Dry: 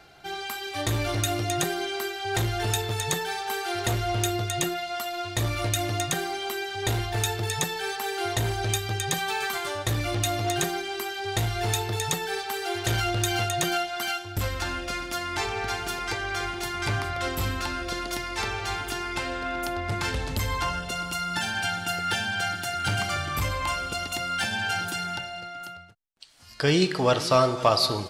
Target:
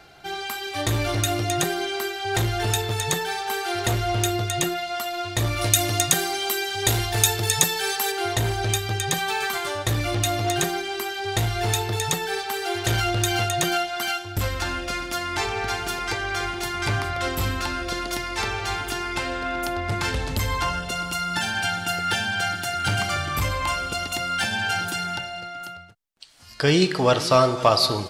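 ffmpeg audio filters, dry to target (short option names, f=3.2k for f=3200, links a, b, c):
-filter_complex "[0:a]asettb=1/sr,asplit=3[a][b][c];[a]atrim=end=5.614[d];[b]atrim=start=5.61:end=8.12,asetpts=PTS-STARTPTS,afade=t=in:d=0.004:c=qsin,afade=t=out:st=2.506:d=0.004:c=qsin,highshelf=f=4.1k:g=10[e];[c]atrim=start=8.116[f];[d][e]acrossfade=d=0.004:c1=hsin:c2=qsin[g];[g][f]acrossfade=d=0.004:c1=qsin:c2=hsin,volume=3dB"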